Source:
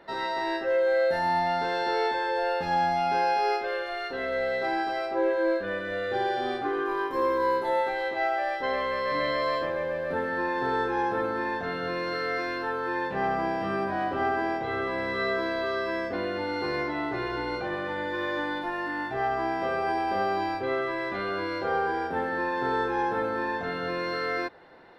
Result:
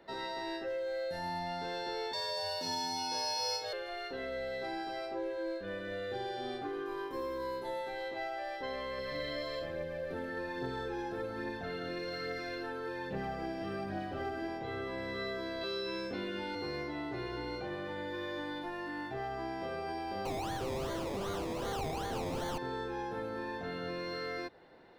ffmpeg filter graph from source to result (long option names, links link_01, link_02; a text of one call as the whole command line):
ffmpeg -i in.wav -filter_complex "[0:a]asettb=1/sr,asplit=3[link_01][link_02][link_03];[link_01]atrim=end=2.134[link_04];[link_02]atrim=start=2.13:end=3.73,asetpts=PTS-STARTPTS,afade=type=in:duration=0.004:curve=qsin,afade=type=out:start_time=1.596:duration=0.004:curve=qsin,highshelf=frequency=3300:width_type=q:width=1.5:gain=11.5,afreqshift=82[link_05];[link_03]atrim=start=3.726[link_06];[link_04][link_05]acrossfade=duration=0.004:curve1=hsin:curve2=qsin[link_07];[link_07][link_06]acrossfade=duration=0.004:curve1=qsin:curve2=hsin,asettb=1/sr,asplit=3[link_08][link_09][link_10];[link_08]atrim=end=8.984[link_11];[link_09]atrim=start=8.98:end=14.48,asetpts=PTS-STARTPTS,afade=type=in:duration=0.004:curve=qsin,afade=type=out:start_time=5.496:duration=0.004:curve=qsin,equalizer=frequency=1000:width=7.5:gain=-10.5,aphaser=in_gain=1:out_gain=1:delay=3.5:decay=0.36:speed=1.2:type=triangular[link_12];[link_10]atrim=start=14.476[link_13];[link_11][link_12]acrossfade=duration=0.004:curve1=hsin:curve2=qsin[link_14];[link_14][link_13]acrossfade=duration=0.004:curve1=qsin:curve2=hsin,asettb=1/sr,asplit=3[link_15][link_16][link_17];[link_15]atrim=end=15.614[link_18];[link_16]atrim=start=15.61:end=16.55,asetpts=PTS-STARTPTS,afade=type=in:duration=0.004:curve=qsin,afade=type=out:start_time=0.936:duration=0.004:curve=qsin,equalizer=frequency=3800:width_type=o:width=1.8:gain=5,asplit=2[link_19][link_20];[link_20]adelay=25,volume=-2.5dB[link_21];[link_19][link_21]amix=inputs=2:normalize=0,atrim=end_sample=41454[link_22];[link_17]atrim=start=16.546[link_23];[link_18][link_22]acrossfade=duration=0.004:curve1=hsin:curve2=qsin[link_24];[link_24][link_23]acrossfade=duration=0.004:curve1=qsin:curve2=hsin,asettb=1/sr,asplit=3[link_25][link_26][link_27];[link_25]atrim=end=20.254[link_28];[link_26]atrim=start=20.25:end=22.58,asetpts=PTS-STARTPTS,afade=type=in:duration=0.004:curve=qsin,afade=type=out:start_time=2.326:duration=0.004:curve=qsin,acrusher=samples=24:mix=1:aa=0.000001:lfo=1:lforange=14.4:lforate=2.6,asplit=2[link_29][link_30];[link_30]highpass=frequency=720:poles=1,volume=24dB,asoftclip=type=tanh:threshold=-17dB[link_31];[link_29][link_31]amix=inputs=2:normalize=0,lowpass=frequency=1400:poles=1,volume=-6dB[link_32];[link_27]atrim=start=22.576[link_33];[link_28][link_32]acrossfade=duration=0.004:curve1=hsin:curve2=qsin[link_34];[link_34][link_33]acrossfade=duration=0.004:curve1=qsin:curve2=hsin,equalizer=frequency=1300:width=0.71:gain=-6,acrossover=split=170|3000[link_35][link_36][link_37];[link_36]acompressor=threshold=-34dB:ratio=3[link_38];[link_35][link_38][link_37]amix=inputs=3:normalize=0,volume=-3.5dB" out.wav